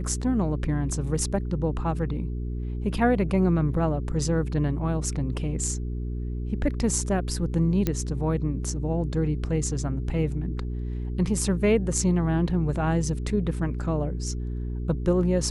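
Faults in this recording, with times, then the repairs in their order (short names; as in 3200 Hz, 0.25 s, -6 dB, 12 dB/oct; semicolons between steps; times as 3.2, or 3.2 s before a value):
hum 60 Hz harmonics 7 -30 dBFS
7.87 pop -11 dBFS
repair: de-click; de-hum 60 Hz, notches 7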